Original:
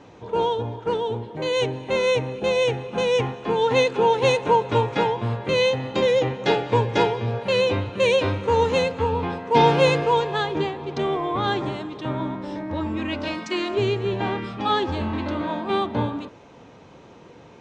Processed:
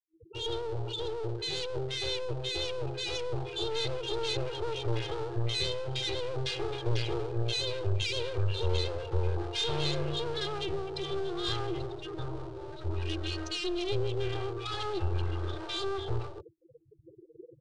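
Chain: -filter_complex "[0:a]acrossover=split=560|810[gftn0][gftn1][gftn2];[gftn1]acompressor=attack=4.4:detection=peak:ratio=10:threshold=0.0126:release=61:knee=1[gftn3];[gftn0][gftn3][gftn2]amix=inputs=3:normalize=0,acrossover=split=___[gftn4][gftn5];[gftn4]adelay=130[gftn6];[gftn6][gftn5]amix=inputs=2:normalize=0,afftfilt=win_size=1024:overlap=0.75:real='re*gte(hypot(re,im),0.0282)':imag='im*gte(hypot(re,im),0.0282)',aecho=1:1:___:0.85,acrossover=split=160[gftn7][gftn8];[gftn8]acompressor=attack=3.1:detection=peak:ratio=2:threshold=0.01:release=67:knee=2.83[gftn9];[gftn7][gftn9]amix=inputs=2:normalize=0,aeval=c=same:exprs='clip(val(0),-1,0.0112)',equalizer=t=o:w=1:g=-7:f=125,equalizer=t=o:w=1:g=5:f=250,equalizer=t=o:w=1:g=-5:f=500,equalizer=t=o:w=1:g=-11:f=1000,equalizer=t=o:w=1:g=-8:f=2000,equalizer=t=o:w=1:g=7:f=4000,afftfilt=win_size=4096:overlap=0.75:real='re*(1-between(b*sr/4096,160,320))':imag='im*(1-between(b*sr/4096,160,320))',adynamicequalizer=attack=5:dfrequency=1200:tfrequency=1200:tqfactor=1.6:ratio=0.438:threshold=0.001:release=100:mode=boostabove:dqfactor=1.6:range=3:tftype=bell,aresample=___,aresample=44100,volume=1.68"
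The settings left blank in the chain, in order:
1400, 2.5, 22050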